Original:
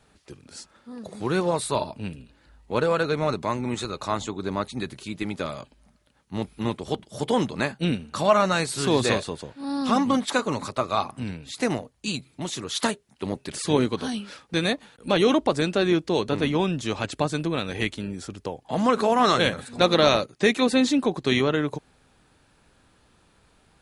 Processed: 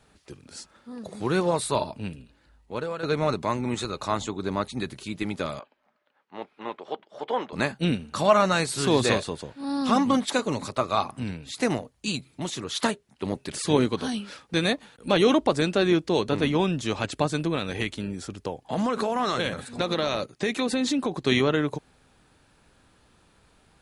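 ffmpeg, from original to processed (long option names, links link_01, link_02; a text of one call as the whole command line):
ffmpeg -i in.wav -filter_complex "[0:a]asettb=1/sr,asplit=3[link_01][link_02][link_03];[link_01]atrim=end=5.594[link_04];[link_02]atrim=start=5.59:end=7.53,asetpts=PTS-STARTPTS,afade=type=in:duration=0.004:curve=qsin,afade=type=out:start_time=1.936:duration=0.004:curve=qsin,highpass=550,lowpass=2200[link_05];[link_03]atrim=start=7.526[link_06];[link_04][link_05]acrossfade=duration=0.004:curve1=hsin:curve2=qsin[link_07];[link_07][link_06]acrossfade=duration=0.004:curve1=qsin:curve2=hsin,asettb=1/sr,asplit=3[link_08][link_09][link_10];[link_08]atrim=end=10.274[link_11];[link_09]atrim=start=10.27:end=10.7,asetpts=PTS-STARTPTS,afade=type=in:duration=0.004:curve=qsin,afade=type=out:start_time=0.426:duration=0.004:curve=qsin,equalizer=frequency=1200:width=1.5:gain=-5.5[link_12];[link_10]atrim=start=10.696[link_13];[link_11][link_12]acrossfade=duration=0.004:curve1=hsin:curve2=qsin[link_14];[link_14][link_13]acrossfade=duration=0.004:curve1=qsin:curve2=hsin,asettb=1/sr,asplit=3[link_15][link_16][link_17];[link_15]atrim=end=12.504[link_18];[link_16]atrim=start=12.5:end=13.25,asetpts=PTS-STARTPTS,afade=type=in:duration=0.004:curve=qsin,afade=type=out:start_time=0.746:duration=0.004:curve=qsin,highshelf=frequency=5200:gain=-4.5[link_19];[link_17]atrim=start=13.246[link_20];[link_18][link_19]acrossfade=duration=0.004:curve1=hsin:curve2=qsin[link_21];[link_21][link_20]acrossfade=duration=0.004:curve1=qsin:curve2=hsin,asettb=1/sr,asplit=3[link_22][link_23][link_24];[link_22]atrim=end=17.554[link_25];[link_23]atrim=start=17.55:end=21.16,asetpts=PTS-STARTPTS,afade=type=in:duration=0.004:curve=qsin,afade=type=out:start_time=3.606:duration=0.004:curve=qsin,acompressor=threshold=-21dB:ratio=6:attack=3.2:release=140:knee=1:detection=peak[link_26];[link_24]atrim=start=21.156[link_27];[link_25][link_26]acrossfade=duration=0.004:curve1=hsin:curve2=qsin[link_28];[link_28][link_27]acrossfade=duration=0.004:curve1=qsin:curve2=hsin,asplit=2[link_29][link_30];[link_29]atrim=end=3.03,asetpts=PTS-STARTPTS,afade=type=out:start_time=1.94:duration=1.09:silence=0.251189[link_31];[link_30]atrim=start=3.03,asetpts=PTS-STARTPTS,afade=type=in:duration=0.004:curve=hsin:silence=0.251189[link_32];[link_31][link_32]concat=n=2:v=0:a=1" out.wav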